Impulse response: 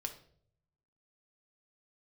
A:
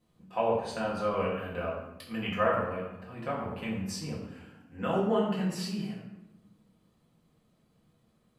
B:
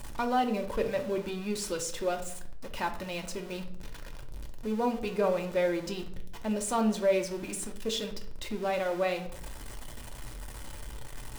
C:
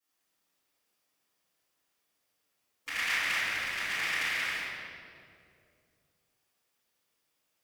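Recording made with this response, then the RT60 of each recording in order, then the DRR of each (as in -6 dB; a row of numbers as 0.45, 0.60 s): B; 1.0, 0.60, 2.5 s; -5.5, 4.0, -17.0 dB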